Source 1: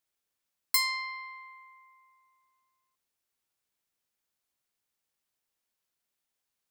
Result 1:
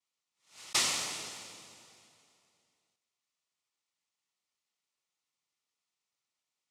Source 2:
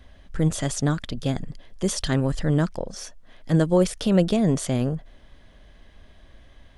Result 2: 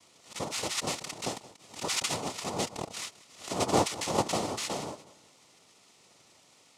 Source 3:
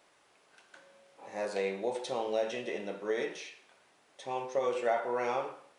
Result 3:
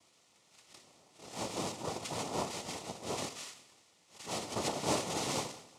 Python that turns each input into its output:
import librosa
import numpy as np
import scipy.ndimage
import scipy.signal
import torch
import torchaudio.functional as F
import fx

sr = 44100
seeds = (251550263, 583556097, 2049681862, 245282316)

y = scipy.signal.sosfilt(scipy.signal.butter(2, 650.0, 'highpass', fs=sr, output='sos'), x)
y = fx.noise_vocoder(y, sr, seeds[0], bands=2)
y = fx.notch(y, sr, hz=1600.0, q=5.1)
y = fx.echo_feedback(y, sr, ms=185, feedback_pct=37, wet_db=-19.0)
y = fx.pre_swell(y, sr, db_per_s=150.0)